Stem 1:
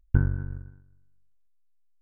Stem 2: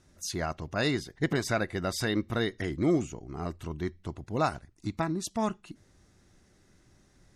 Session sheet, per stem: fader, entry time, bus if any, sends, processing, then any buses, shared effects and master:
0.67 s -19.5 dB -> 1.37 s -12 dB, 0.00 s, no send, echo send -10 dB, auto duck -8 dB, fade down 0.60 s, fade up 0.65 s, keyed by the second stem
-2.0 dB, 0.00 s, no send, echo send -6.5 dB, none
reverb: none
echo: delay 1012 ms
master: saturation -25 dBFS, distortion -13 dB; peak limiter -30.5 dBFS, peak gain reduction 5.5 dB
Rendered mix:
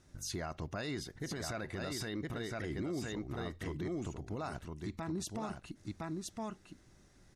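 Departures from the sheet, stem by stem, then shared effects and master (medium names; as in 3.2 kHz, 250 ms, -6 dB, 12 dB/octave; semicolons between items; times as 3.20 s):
stem 1 -19.5 dB -> -27.0 dB; master: missing saturation -25 dBFS, distortion -13 dB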